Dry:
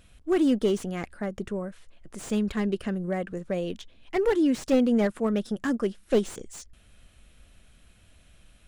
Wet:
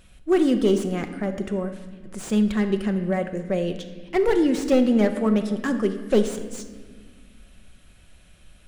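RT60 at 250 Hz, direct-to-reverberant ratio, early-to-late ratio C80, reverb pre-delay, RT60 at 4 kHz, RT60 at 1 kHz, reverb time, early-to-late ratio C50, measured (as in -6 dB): 2.6 s, 6.5 dB, 11.0 dB, 5 ms, 1.3 s, 1.4 s, 1.6 s, 9.5 dB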